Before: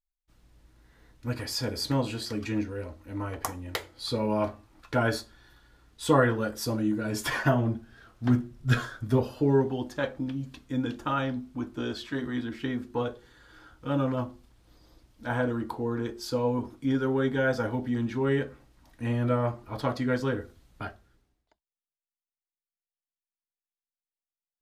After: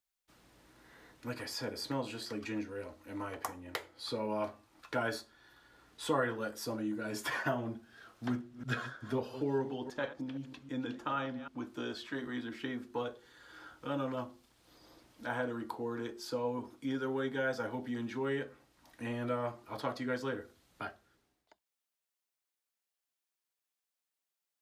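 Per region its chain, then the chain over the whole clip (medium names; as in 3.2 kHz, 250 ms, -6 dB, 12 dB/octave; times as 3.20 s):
8.32–11.65 s: chunks repeated in reverse 158 ms, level -13 dB + treble shelf 6.8 kHz -9.5 dB
whole clip: high-pass 330 Hz 6 dB/octave; three bands compressed up and down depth 40%; trim -5.5 dB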